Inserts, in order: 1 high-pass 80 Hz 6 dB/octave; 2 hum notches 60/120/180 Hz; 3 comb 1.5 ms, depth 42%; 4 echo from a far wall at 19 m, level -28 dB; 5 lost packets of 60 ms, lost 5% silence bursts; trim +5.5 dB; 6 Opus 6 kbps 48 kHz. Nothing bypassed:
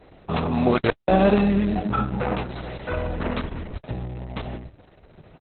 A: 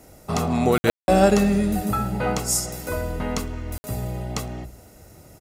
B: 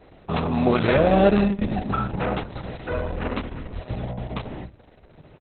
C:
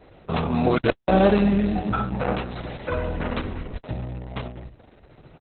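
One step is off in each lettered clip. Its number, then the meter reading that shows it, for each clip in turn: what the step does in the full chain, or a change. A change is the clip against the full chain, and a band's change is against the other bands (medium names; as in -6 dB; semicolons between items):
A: 6, 4 kHz band +3.0 dB; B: 5, momentary loudness spread change +2 LU; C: 4, crest factor change +2.5 dB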